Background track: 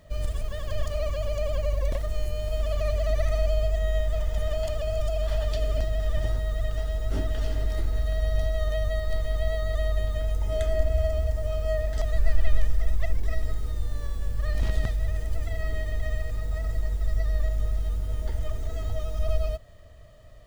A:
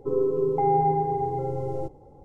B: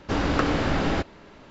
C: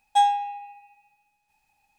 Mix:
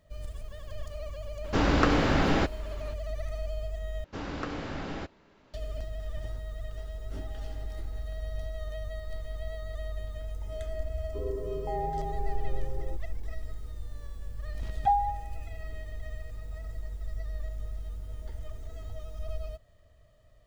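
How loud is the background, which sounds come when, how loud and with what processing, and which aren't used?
background track -10.5 dB
1.44 s: add B -0.5 dB
4.04 s: replace with B -12.5 dB
6.63 s: add A -17 dB + differentiator
11.09 s: add A -12 dB
14.70 s: add C -13 dB + touch-sensitive low-pass 710–3100 Hz down, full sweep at -18 dBFS

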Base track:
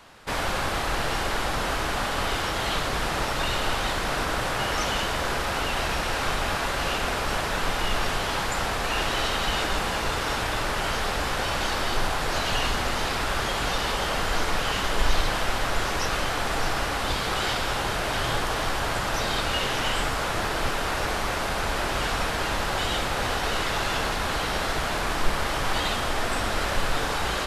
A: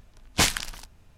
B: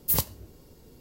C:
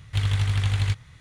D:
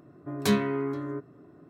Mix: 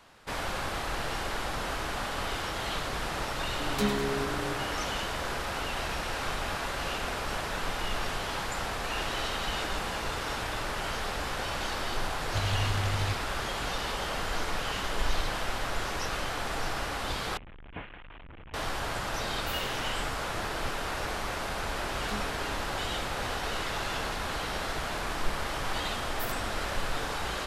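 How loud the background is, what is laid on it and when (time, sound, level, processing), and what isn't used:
base track -6.5 dB
3.33 s: add D -5.5 dB + feedback delay 102 ms, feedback 59%, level -8 dB
12.20 s: add C -8 dB
17.37 s: replace with A -16.5 dB + one-bit delta coder 16 kbps, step -24 dBFS
19.38 s: add B -12 dB + feedback comb 53 Hz, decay 0.75 s, mix 80%
21.63 s: add D -17.5 dB
26.11 s: add B -16.5 dB

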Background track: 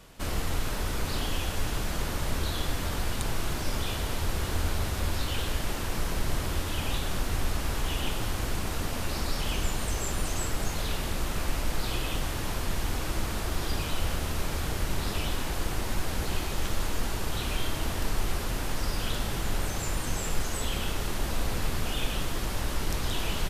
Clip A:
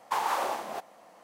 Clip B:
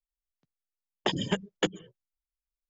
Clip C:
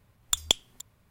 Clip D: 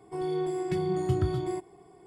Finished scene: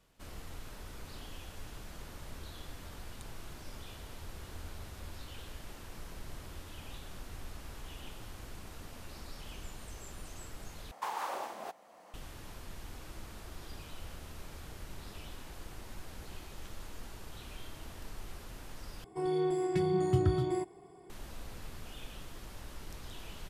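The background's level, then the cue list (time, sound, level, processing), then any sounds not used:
background track -16.5 dB
10.91 s: replace with A -8.5 dB + three bands compressed up and down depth 40%
19.04 s: replace with D -1 dB
not used: B, C

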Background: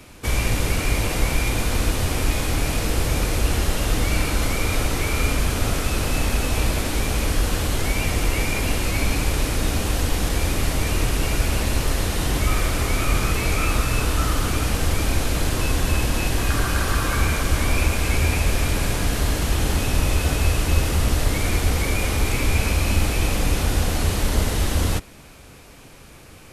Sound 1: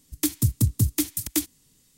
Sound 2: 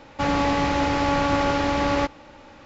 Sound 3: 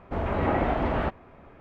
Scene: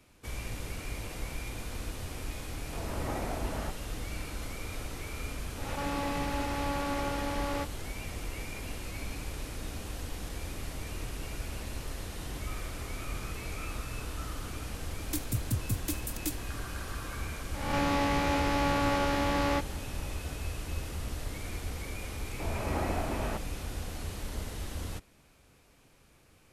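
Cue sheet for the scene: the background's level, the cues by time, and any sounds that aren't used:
background -17 dB
2.61 s: add 3 -11.5 dB
5.58 s: add 2 -12 dB + swell ahead of each attack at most 58 dB/s
14.90 s: add 1 -10.5 dB
17.54 s: add 2 -8 dB + reverse spectral sustain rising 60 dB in 0.78 s
22.28 s: add 3 -8.5 dB

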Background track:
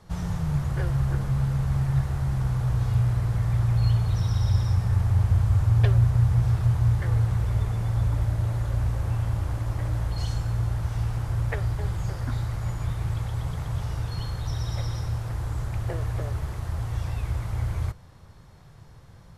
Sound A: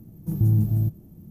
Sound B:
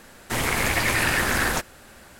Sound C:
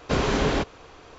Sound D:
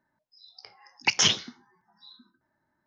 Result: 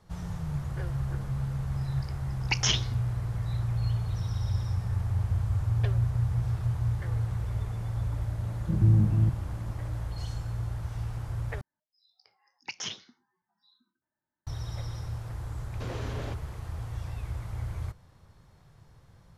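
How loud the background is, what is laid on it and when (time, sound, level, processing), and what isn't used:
background track -7 dB
1.44 s: add D -5 dB
8.41 s: add A -1.5 dB + steep low-pass 1.3 kHz
11.61 s: replace with D -15 dB
15.71 s: add C -10.5 dB + compression 2:1, threshold -30 dBFS
not used: B

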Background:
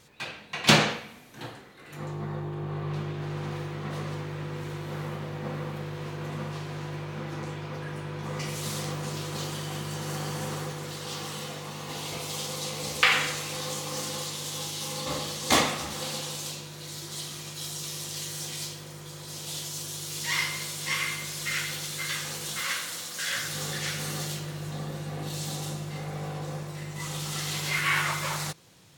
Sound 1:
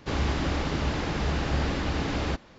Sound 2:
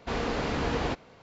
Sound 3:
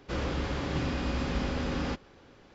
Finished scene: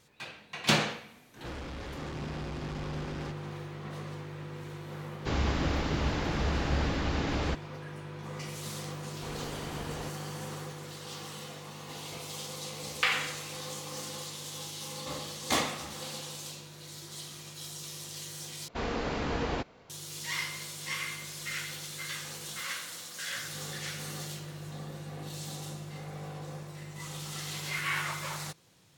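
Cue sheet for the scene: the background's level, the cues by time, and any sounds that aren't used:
background -6.5 dB
1.36 s: add 3 -1.5 dB + saturation -36.5 dBFS
5.19 s: add 1 -2.5 dB
9.15 s: add 2 -11.5 dB
18.68 s: replace with 2 -3 dB

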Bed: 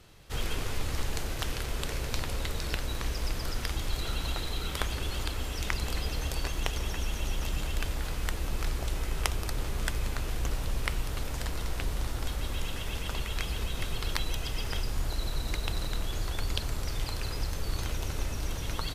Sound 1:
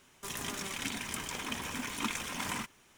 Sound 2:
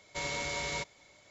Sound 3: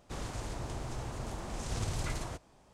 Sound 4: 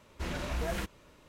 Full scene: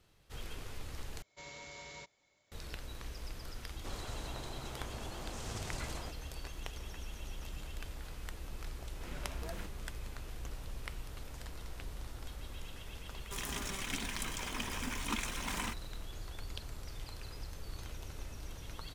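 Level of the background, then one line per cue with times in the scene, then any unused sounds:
bed -12.5 dB
1.22 s: replace with 2 -14 dB
3.74 s: add 3 -4 dB + bass shelf 130 Hz -8.5 dB
8.81 s: add 4 -11.5 dB
13.08 s: add 1 -2.5 dB

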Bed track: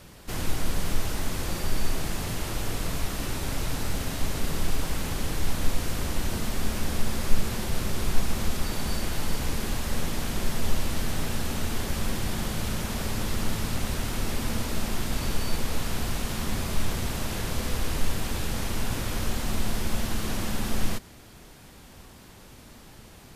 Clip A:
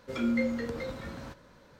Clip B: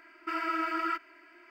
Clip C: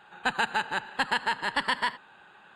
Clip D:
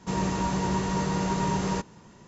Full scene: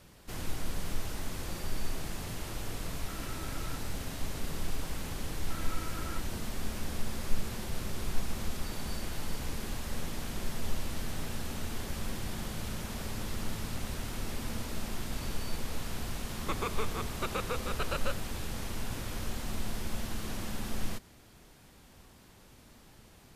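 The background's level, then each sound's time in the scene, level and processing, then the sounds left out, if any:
bed track -8 dB
2.81 s: add B -17.5 dB
5.23 s: add B -13.5 dB
16.23 s: add C -8.5 dB + frequency shift -430 Hz
not used: A, D

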